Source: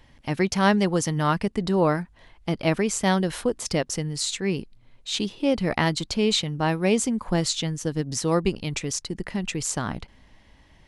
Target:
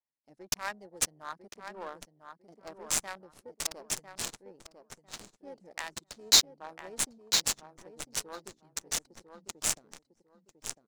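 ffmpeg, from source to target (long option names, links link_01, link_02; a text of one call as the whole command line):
ffmpeg -i in.wav -filter_complex "[0:a]aeval=exprs='if(lt(val(0),0),0.447*val(0),val(0))':channel_layout=same,afwtdn=0.0355,highpass=frequency=230:poles=1,aderivative,asoftclip=type=hard:threshold=-26dB,acontrast=24,asplit=2[link_01][link_02];[link_02]aecho=0:1:1000|2000|3000|4000:0.473|0.132|0.0371|0.0104[link_03];[link_01][link_03]amix=inputs=2:normalize=0,adynamicequalizer=threshold=0.00126:dfrequency=7600:dqfactor=0.75:tfrequency=7600:tqfactor=0.75:attack=5:release=100:ratio=0.375:range=2.5:mode=cutabove:tftype=bell,aexciter=amount=14.1:drive=2.4:freq=4600,adynamicsmooth=sensitivity=3.5:basefreq=660" out.wav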